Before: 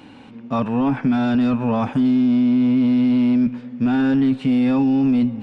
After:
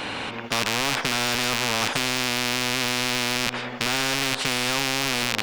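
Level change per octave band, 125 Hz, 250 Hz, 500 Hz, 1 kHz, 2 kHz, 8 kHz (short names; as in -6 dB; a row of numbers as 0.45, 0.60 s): -8.0 dB, -17.5 dB, -2.5 dB, +1.5 dB, +10.5 dB, n/a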